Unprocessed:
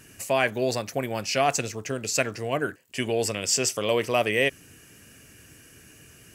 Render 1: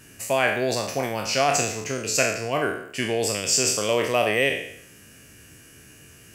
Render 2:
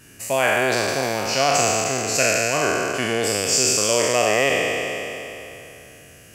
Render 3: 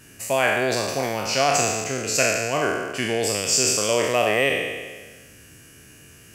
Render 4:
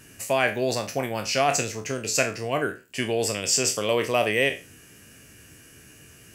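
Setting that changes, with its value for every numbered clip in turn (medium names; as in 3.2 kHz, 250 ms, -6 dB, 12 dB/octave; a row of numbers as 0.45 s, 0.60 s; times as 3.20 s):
spectral sustain, RT60: 0.69 s, 3.1 s, 1.44 s, 0.31 s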